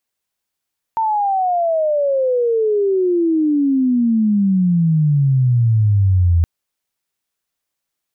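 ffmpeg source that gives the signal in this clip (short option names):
-f lavfi -i "aevalsrc='pow(10,(-14.5+4.5*t/5.47)/20)*sin(2*PI*910*5.47/log(82/910)*(exp(log(82/910)*t/5.47)-1))':d=5.47:s=44100"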